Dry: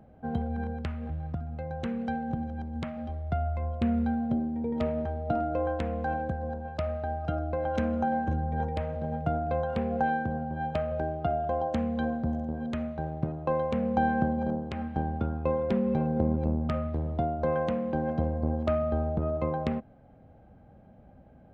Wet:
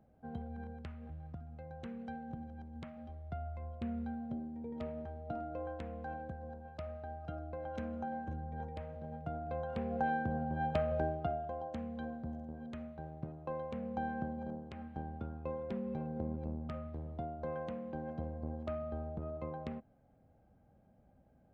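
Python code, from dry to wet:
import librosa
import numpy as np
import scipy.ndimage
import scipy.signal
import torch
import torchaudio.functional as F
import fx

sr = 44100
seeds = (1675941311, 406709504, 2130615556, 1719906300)

y = fx.gain(x, sr, db=fx.line((9.27, -12.5), (10.51, -3.0), (11.05, -3.0), (11.53, -12.5)))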